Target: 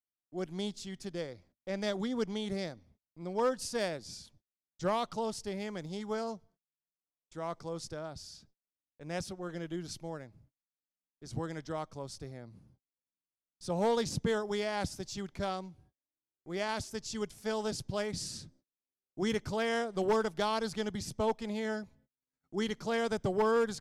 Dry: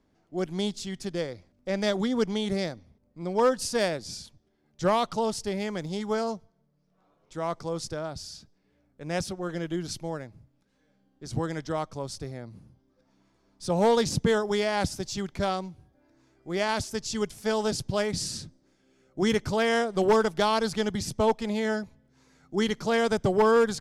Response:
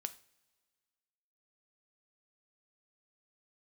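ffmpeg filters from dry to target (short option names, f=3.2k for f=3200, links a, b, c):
-af "agate=range=-35dB:threshold=-56dB:ratio=16:detection=peak,volume=-7.5dB"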